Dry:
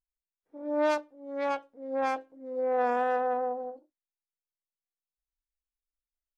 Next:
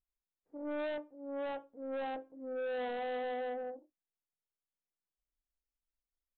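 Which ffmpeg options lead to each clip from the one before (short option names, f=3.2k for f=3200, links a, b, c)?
-af "tiltshelf=f=1.4k:g=7.5,aresample=8000,asoftclip=type=tanh:threshold=-28dB,aresample=44100,volume=-6.5dB"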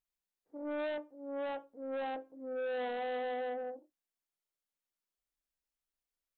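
-af "lowshelf=f=110:g=-9,volume=1dB"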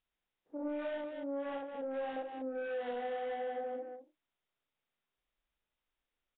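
-af "aecho=1:1:61.22|250.7:0.891|0.282,acompressor=threshold=-41dB:ratio=6,volume=5dB" -ar 8000 -c:a nellymoser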